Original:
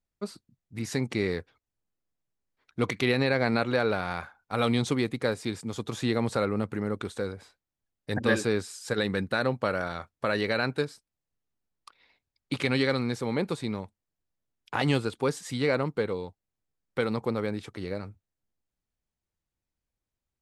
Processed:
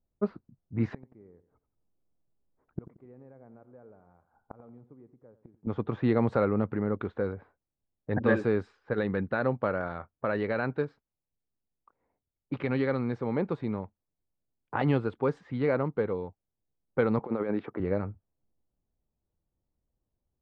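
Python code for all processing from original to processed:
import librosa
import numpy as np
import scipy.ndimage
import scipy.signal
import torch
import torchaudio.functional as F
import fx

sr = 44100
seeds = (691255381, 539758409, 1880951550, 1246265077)

y = fx.chain(x, sr, fx.gate_flip(shuts_db=-28.0, range_db=-32),
    fx.echo_feedback(ms=89, feedback_pct=37, wet_db=-14.5), at=(0.94, 5.67))
y = fx.chain(y, sr, fx.highpass(hz=230.0, slope=12),
    fx.over_compress(threshold_db=-33.0, ratio=-0.5), at=(17.19, 17.8))
y = fx.env_lowpass(y, sr, base_hz=750.0, full_db=-23.5)
y = fx.rider(y, sr, range_db=10, speed_s=2.0)
y = scipy.signal.sosfilt(scipy.signal.butter(2, 1500.0, 'lowpass', fs=sr, output='sos'), y)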